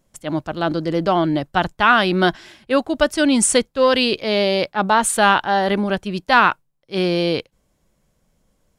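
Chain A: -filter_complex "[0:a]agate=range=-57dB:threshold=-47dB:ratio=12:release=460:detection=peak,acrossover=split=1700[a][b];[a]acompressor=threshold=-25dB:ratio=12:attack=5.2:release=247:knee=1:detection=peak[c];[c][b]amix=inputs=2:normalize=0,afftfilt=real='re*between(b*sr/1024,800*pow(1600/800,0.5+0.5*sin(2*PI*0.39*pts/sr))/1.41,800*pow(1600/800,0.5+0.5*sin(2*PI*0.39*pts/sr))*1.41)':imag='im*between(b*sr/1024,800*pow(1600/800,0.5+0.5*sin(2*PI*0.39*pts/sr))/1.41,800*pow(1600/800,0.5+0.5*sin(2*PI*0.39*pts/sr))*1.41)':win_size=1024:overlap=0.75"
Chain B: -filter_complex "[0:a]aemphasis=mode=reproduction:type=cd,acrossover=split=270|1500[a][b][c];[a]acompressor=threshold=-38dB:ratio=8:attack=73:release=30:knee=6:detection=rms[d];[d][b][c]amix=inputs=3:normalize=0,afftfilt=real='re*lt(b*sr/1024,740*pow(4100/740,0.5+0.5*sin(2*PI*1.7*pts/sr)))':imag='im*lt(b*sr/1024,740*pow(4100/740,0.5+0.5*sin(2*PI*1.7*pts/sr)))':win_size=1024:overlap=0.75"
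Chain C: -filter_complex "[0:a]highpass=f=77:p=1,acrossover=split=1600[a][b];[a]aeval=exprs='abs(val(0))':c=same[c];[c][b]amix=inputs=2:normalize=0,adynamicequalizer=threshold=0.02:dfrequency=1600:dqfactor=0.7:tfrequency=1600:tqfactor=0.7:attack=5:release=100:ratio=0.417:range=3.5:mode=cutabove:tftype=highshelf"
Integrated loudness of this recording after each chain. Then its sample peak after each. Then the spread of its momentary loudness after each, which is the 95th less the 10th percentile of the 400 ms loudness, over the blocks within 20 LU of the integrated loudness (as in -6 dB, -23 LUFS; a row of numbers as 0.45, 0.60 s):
-32.0, -20.5, -24.0 LUFS; -13.5, -2.0, -2.5 dBFS; 20, 10, 9 LU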